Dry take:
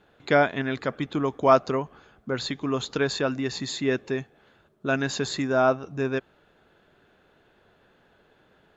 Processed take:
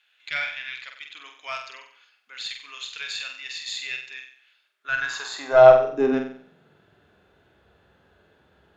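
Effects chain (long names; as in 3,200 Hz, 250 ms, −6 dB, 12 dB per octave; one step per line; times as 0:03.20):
high-pass filter sweep 2,500 Hz → 62 Hz, 0:04.63–0:07.13
harmonic and percussive parts rebalanced percussive −7 dB
harmonic generator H 4 −21 dB, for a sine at −6 dBFS
on a send: flutter between parallel walls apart 8 metres, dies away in 0.52 s
on the sum: level +1 dB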